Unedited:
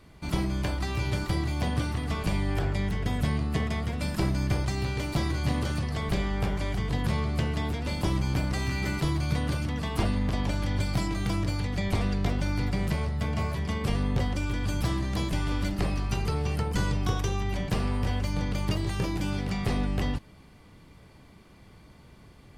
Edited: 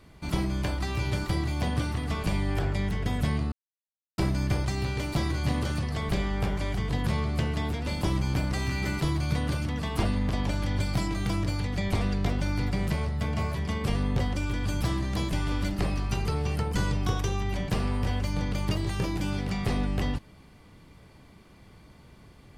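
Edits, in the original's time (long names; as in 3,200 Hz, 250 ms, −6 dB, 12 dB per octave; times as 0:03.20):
0:03.52–0:04.18: silence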